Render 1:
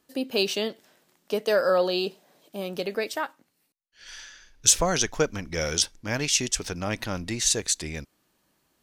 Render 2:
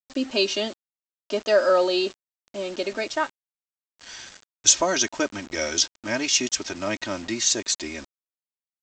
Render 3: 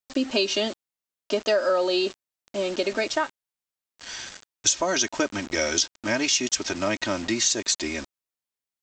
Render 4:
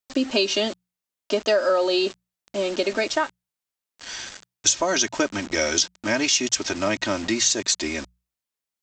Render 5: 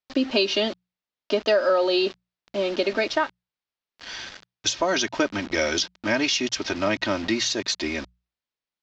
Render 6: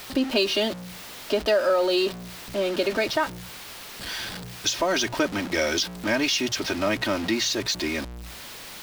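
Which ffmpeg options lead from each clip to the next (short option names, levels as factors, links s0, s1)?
-af "highpass=150,aecho=1:1:3.2:0.88,aresample=16000,acrusher=bits=6:mix=0:aa=0.000001,aresample=44100"
-af "acompressor=threshold=0.0631:ratio=4,volume=1.58"
-af "bandreject=f=60:t=h:w=6,bandreject=f=120:t=h:w=6,bandreject=f=180:t=h:w=6,volume=1.26"
-af "lowpass=f=5000:w=0.5412,lowpass=f=5000:w=1.3066"
-af "aeval=exprs='val(0)+0.5*0.0335*sgn(val(0))':c=same,volume=0.794"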